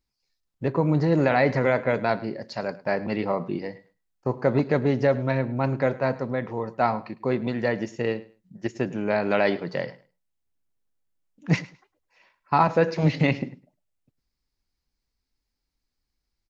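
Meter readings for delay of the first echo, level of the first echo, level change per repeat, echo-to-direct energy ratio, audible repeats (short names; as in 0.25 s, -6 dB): 0.105 s, -19.5 dB, -14.5 dB, -19.5 dB, 2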